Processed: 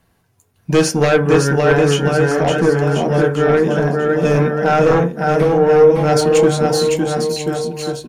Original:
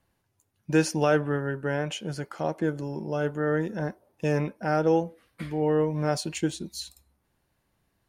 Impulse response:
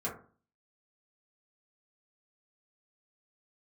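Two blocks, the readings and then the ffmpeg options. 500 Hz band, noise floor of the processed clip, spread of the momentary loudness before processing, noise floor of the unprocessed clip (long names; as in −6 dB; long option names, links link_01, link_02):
+15.0 dB, −61 dBFS, 12 LU, −75 dBFS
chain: -filter_complex "[0:a]aecho=1:1:560|1036|1441|1785|2077:0.631|0.398|0.251|0.158|0.1,aeval=exprs='0.447*sin(PI/2*3.16*val(0)/0.447)':channel_layout=same,asplit=2[link_01][link_02];[1:a]atrim=start_sample=2205,atrim=end_sample=3969[link_03];[link_02][link_03]afir=irnorm=-1:irlink=0,volume=-6dB[link_04];[link_01][link_04]amix=inputs=2:normalize=0,volume=-4.5dB"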